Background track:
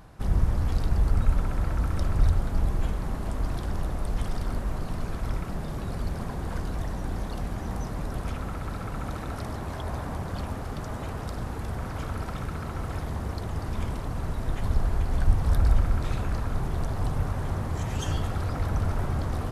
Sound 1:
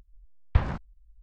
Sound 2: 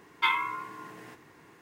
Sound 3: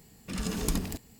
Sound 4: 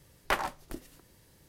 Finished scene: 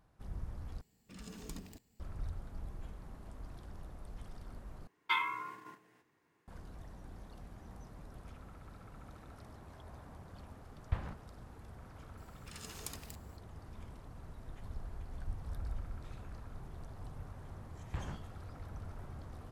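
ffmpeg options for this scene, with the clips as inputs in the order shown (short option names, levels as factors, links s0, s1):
-filter_complex "[3:a]asplit=2[s0][s1];[1:a]asplit=2[s2][s3];[0:a]volume=0.106[s4];[s0]equalizer=f=11000:w=5.9:g=-13.5[s5];[2:a]agate=range=0.224:threshold=0.00562:ratio=16:release=100:detection=peak[s6];[s1]highpass=f=1100:p=1[s7];[s3]asoftclip=type=tanh:threshold=0.119[s8];[s4]asplit=3[s9][s10][s11];[s9]atrim=end=0.814[s12];[s5]atrim=end=1.19,asetpts=PTS-STARTPTS,volume=0.15[s13];[s10]atrim=start=1.996:end=4.874[s14];[s6]atrim=end=1.61,asetpts=PTS-STARTPTS,volume=0.473[s15];[s11]atrim=start=6.476[s16];[s2]atrim=end=1.22,asetpts=PTS-STARTPTS,volume=0.224,afade=t=in:d=0.004:c=hsin,afade=t=out:st=1.216:d=0.004:c=hsin,adelay=10370[s17];[s7]atrim=end=1.19,asetpts=PTS-STARTPTS,volume=0.316,afade=t=in:d=0.004:c=hsin,afade=t=out:st=1.186:d=0.004:c=hsin,adelay=12180[s18];[s8]atrim=end=1.22,asetpts=PTS-STARTPTS,volume=0.251,afade=t=in:d=0.004:c=hsin,afade=t=out:st=1.216:d=0.004:c=hsin,adelay=17390[s19];[s12][s13]acrossfade=d=0.004:c1=hsin:c2=hsin[s20];[s20][s14]acrossfade=d=0.004:c1=hsin:c2=hsin[s21];[s21][s15]acrossfade=d=0.004:c1=hsin:c2=hsin[s22];[s22][s16]acrossfade=d=0.004:c1=hsin:c2=hsin[s23];[s23][s17][s18][s19]amix=inputs=4:normalize=0"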